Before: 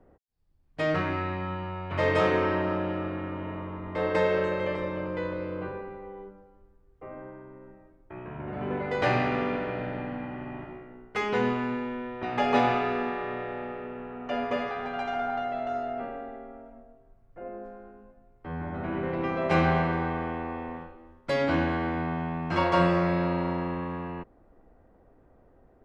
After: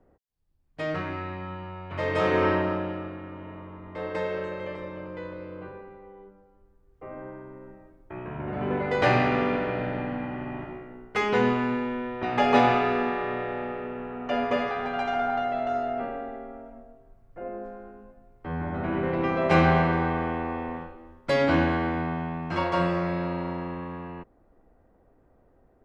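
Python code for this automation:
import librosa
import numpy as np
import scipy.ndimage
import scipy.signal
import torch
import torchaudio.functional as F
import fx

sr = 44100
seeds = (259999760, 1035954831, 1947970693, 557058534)

y = fx.gain(x, sr, db=fx.line((2.08, -3.5), (2.47, 4.0), (3.19, -5.5), (6.19, -5.5), (7.31, 3.5), (21.61, 3.5), (22.73, -2.5)))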